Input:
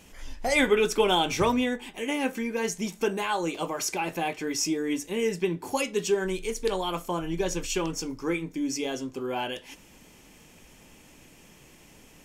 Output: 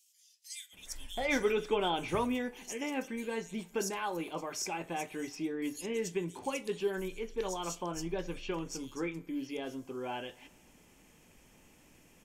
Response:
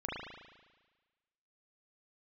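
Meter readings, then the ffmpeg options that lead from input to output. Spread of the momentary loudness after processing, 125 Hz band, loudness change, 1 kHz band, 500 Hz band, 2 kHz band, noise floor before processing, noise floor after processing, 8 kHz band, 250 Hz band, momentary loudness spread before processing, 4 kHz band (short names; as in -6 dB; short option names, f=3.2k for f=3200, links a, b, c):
10 LU, -7.5 dB, -8.5 dB, -7.5 dB, -7.5 dB, -8.5 dB, -54 dBFS, -63 dBFS, -8.5 dB, -7.5 dB, 9 LU, -10.0 dB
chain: -filter_complex "[0:a]acrossover=split=4000[a][b];[a]adelay=730[c];[c][b]amix=inputs=2:normalize=0,asplit=2[d][e];[1:a]atrim=start_sample=2205,asetrate=39249,aresample=44100[f];[e][f]afir=irnorm=-1:irlink=0,volume=-27dB[g];[d][g]amix=inputs=2:normalize=0,volume=-8dB"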